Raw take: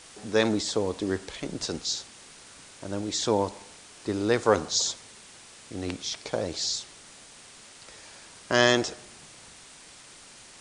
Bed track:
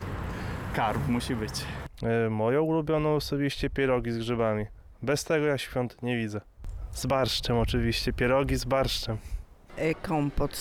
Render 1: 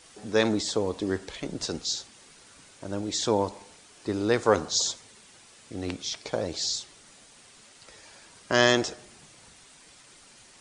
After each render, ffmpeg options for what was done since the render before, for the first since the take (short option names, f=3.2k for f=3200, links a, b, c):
-af "afftdn=nr=6:nf=-50"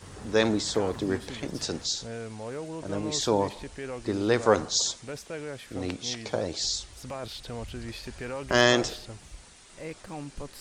-filter_complex "[1:a]volume=-11.5dB[a];[0:a][a]amix=inputs=2:normalize=0"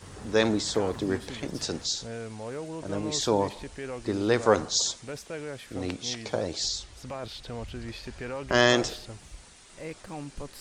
-filter_complex "[0:a]asettb=1/sr,asplit=3[a][b][c];[a]atrim=end=6.684[d];[b]atrim=start=6.68:end=8.7,asetpts=PTS-STARTPTS,afade=t=in:d=0.004:c=qsin,afade=t=out:st=2.016:d=0.004:c=qsin,highshelf=f=10k:g=-11[e];[c]atrim=start=8.696[f];[d][e]acrossfade=d=0.004:c1=hsin:c2=qsin[g];[g][f]acrossfade=d=0.004:c1=qsin:c2=hsin"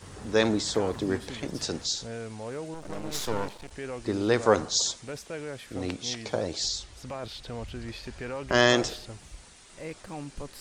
-filter_complex "[0:a]asettb=1/sr,asplit=3[a][b][c];[a]atrim=end=2.744[d];[b]atrim=start=2.74:end=3.71,asetpts=PTS-STARTPTS,afade=t=in:d=0.004:c=qsin,afade=t=out:st=0.966:d=0.004:c=qsin,aeval=exprs='max(val(0),0)':c=same[e];[c]atrim=start=3.706[f];[d][e]acrossfade=d=0.004:c1=hsin:c2=qsin[g];[g][f]acrossfade=d=0.004:c1=qsin:c2=hsin"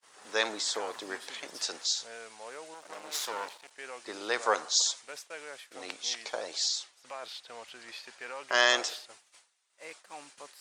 -af "agate=range=-33dB:threshold=-38dB:ratio=3:detection=peak,highpass=800"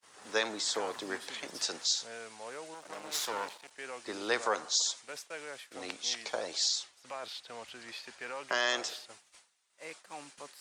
-filter_complex "[0:a]acrossover=split=260|1500[a][b][c];[a]acontrast=80[d];[d][b][c]amix=inputs=3:normalize=0,alimiter=limit=-17dB:level=0:latency=1:release=385"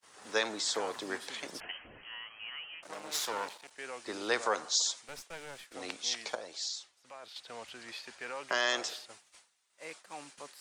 -filter_complex "[0:a]asettb=1/sr,asplit=3[a][b][c];[a]atrim=end=1.604[d];[b]atrim=start=1.6:end=2.83,asetpts=PTS-STARTPTS,afade=t=in:d=0.004:c=qsin,afade=t=out:st=1.226:d=0.004:c=qsin,lowpass=f=2.9k:t=q:w=0.5098,lowpass=f=2.9k:t=q:w=0.6013,lowpass=f=2.9k:t=q:w=0.9,lowpass=f=2.9k:t=q:w=2.563,afreqshift=-3400[e];[c]atrim=start=2.826[f];[d][e]acrossfade=d=0.004:c1=hsin:c2=qsin[g];[g][f]acrossfade=d=0.004:c1=qsin:c2=hsin,asettb=1/sr,asplit=3[h][i][j];[h]atrim=end=5.044[k];[i]atrim=start=5.04:end=5.74,asetpts=PTS-STARTPTS,afade=t=in:d=0.004:c=qsin,afade=t=out:st=0.696:d=0.004:c=qsin,aeval=exprs='clip(val(0),-1,0.00316)':c=same[l];[j]atrim=start=5.736[m];[k][l]acrossfade=d=0.004:c1=hsin:c2=qsin[n];[n][m]acrossfade=d=0.004:c1=qsin:c2=hsin,asplit=3[o][p][q];[o]atrim=end=6.352[r];[p]atrim=start=6.348:end=7.362,asetpts=PTS-STARTPTS,volume=-7.5dB[s];[q]atrim=start=7.358[t];[r][s]acrossfade=d=0.004:c1=hsin:c2=hsin[u];[u][t]acrossfade=d=0.004:c1=hsin:c2=hsin"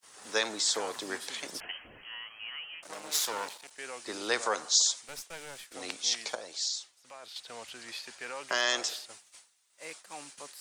-af "highshelf=f=4.5k:g=8.5"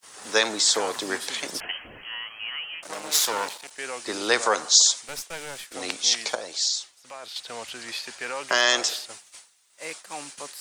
-af "volume=8dB"